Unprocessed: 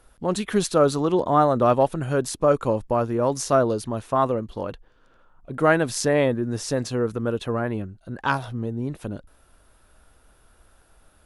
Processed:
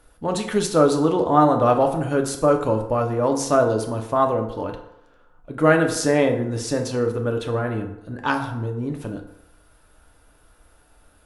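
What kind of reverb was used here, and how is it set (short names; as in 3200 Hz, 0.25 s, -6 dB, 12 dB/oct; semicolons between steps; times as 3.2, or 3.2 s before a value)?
FDN reverb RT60 0.85 s, low-frequency decay 0.75×, high-frequency decay 0.6×, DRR 3 dB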